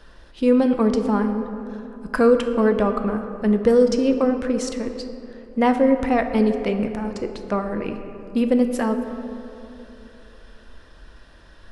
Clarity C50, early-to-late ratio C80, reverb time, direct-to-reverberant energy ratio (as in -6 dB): 8.0 dB, 9.0 dB, 3.0 s, 6.0 dB